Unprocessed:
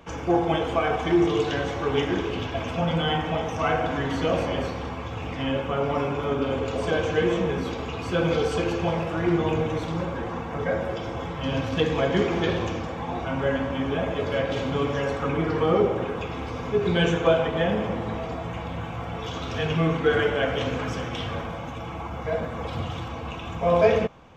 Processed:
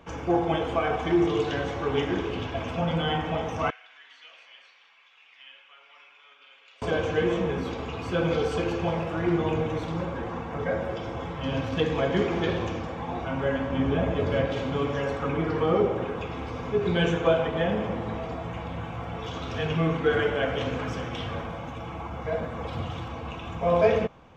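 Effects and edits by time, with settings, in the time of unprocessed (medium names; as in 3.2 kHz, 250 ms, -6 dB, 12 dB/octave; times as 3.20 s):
3.70–6.82 s: ladder band-pass 3.2 kHz, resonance 25%
13.72–14.48 s: bass shelf 320 Hz +7 dB
whole clip: treble shelf 5.2 kHz -5 dB; trim -2 dB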